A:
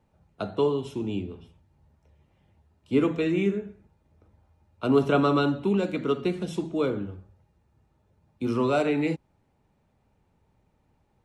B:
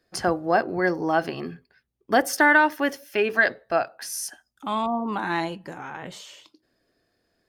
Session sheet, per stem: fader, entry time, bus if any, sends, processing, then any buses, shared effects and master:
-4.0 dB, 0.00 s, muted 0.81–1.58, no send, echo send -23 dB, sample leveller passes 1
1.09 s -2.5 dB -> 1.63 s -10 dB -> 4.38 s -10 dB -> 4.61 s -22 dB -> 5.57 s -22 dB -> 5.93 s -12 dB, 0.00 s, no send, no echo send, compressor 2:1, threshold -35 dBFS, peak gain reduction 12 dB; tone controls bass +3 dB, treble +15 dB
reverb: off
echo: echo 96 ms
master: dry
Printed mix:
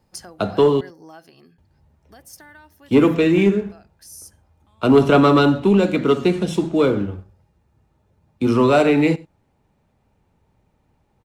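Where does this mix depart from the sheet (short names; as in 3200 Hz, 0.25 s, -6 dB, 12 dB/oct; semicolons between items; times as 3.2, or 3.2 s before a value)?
stem A -4.0 dB -> +6.0 dB; stem B -2.5 dB -> -11.0 dB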